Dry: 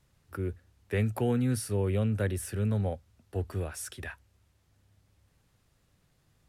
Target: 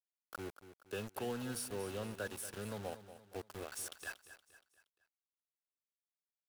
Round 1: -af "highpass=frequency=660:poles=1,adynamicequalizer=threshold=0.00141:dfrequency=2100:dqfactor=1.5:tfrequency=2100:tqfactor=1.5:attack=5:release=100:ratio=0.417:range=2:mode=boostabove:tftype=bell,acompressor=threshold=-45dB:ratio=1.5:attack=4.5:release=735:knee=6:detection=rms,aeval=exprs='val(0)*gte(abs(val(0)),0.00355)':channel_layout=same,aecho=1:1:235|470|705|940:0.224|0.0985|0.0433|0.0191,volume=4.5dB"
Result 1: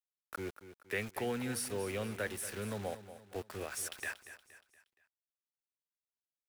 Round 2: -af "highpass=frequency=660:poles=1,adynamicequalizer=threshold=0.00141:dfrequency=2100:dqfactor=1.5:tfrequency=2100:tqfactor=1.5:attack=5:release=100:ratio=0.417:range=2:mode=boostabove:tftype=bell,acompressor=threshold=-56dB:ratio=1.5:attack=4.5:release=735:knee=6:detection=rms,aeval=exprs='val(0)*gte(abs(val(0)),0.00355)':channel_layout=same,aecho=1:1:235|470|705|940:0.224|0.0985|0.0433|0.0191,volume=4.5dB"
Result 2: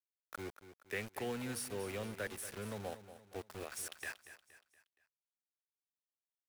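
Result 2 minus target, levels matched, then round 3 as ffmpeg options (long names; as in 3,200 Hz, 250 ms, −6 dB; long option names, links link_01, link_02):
2,000 Hz band +2.5 dB
-af "highpass=frequency=660:poles=1,adynamicequalizer=threshold=0.00141:dfrequency=2100:dqfactor=1.5:tfrequency=2100:tqfactor=1.5:attack=5:release=100:ratio=0.417:range=2:mode=boostabove:tftype=bell,asuperstop=centerf=2100:order=20:qfactor=2.5,acompressor=threshold=-56dB:ratio=1.5:attack=4.5:release=735:knee=6:detection=rms,aeval=exprs='val(0)*gte(abs(val(0)),0.00355)':channel_layout=same,aecho=1:1:235|470|705|940:0.224|0.0985|0.0433|0.0191,volume=4.5dB"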